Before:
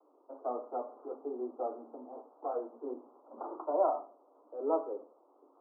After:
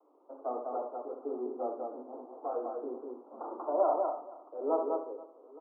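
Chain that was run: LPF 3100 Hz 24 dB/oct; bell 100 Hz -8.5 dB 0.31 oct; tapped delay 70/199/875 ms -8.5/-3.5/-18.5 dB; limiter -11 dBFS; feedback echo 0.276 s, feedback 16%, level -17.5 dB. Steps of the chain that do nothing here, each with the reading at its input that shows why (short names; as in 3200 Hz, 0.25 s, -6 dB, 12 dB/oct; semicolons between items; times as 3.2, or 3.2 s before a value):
LPF 3100 Hz: input band ends at 1400 Hz; bell 100 Hz: input band starts at 210 Hz; limiter -11 dBFS: input peak -16.5 dBFS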